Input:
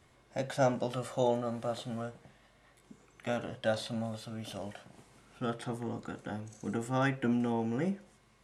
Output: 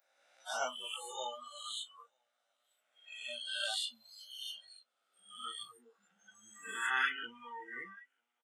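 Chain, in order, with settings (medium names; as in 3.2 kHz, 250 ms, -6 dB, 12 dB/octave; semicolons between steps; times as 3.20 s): reverse spectral sustain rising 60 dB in 1.97 s; chorus voices 4, 0.6 Hz, delay 18 ms, depth 2.8 ms; dynamic bell 2.9 kHz, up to +6 dB, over -54 dBFS, Q 1.6; high-pass 1.2 kHz 12 dB/octave; 1.09–3.86 s: peaking EQ 8.7 kHz +5.5 dB 0.6 oct; feedback delay 941 ms, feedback 43%, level -13.5 dB; spectral noise reduction 29 dB; trim +1 dB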